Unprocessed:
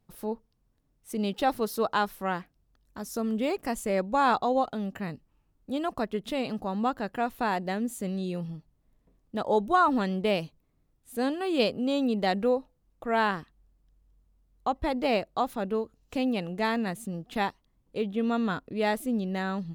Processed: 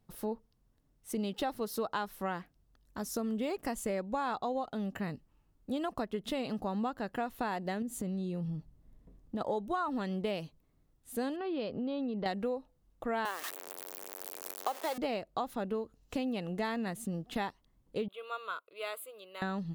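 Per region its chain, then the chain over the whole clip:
7.82–9.41 s: bass shelf 450 Hz +8.5 dB + compression 2.5:1, threshold -36 dBFS
11.36–12.26 s: treble shelf 3.1 kHz -9.5 dB + compression 3:1, threshold -33 dBFS + brick-wall FIR low-pass 5.9 kHz
13.25–14.98 s: jump at every zero crossing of -30.5 dBFS + high-pass 410 Hz 24 dB/octave + treble shelf 7.9 kHz +10.5 dB
18.08–19.42 s: dynamic bell 3.3 kHz, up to -5 dB, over -50 dBFS, Q 1.5 + high-pass 940 Hz + static phaser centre 1.2 kHz, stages 8
whole clip: compression, threshold -31 dBFS; band-stop 2.4 kHz, Q 23

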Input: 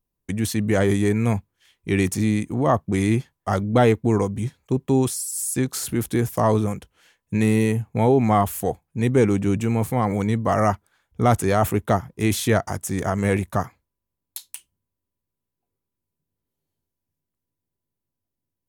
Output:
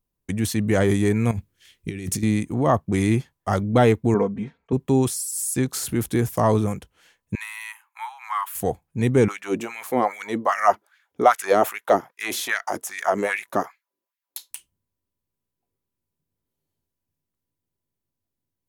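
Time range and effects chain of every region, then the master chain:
1.31–2.23 s: peaking EQ 900 Hz -11 dB 1.2 oct + compressor with a negative ratio -29 dBFS
4.14–4.73 s: low-pass 2.1 kHz + bass shelf 110 Hz -11 dB + comb 4.4 ms
7.35–8.55 s: steep high-pass 920 Hz 72 dB/octave + peaking EQ 6.3 kHz -9 dB 1.6 oct
9.28–14.51 s: peaking EQ 8.5 kHz -5 dB 0.34 oct + band-stop 460 Hz, Q 15 + LFO high-pass sine 2.5 Hz 300–2100 Hz
whole clip: none

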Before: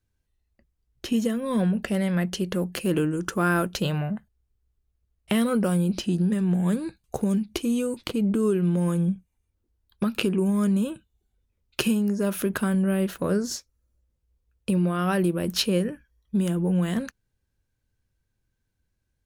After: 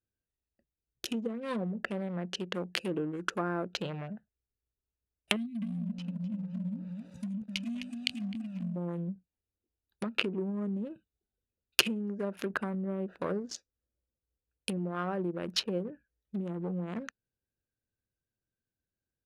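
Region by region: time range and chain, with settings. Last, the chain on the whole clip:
5.36–8.76 s: brick-wall FIR band-stop 290–2000 Hz + peaking EQ 390 Hz -4.5 dB 1.1 oct + bit-crushed delay 258 ms, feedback 35%, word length 7-bit, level -3.5 dB
whole clip: local Wiener filter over 41 samples; low-pass that closes with the level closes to 630 Hz, closed at -20 dBFS; tilt EQ +4.5 dB/octave; trim -1 dB

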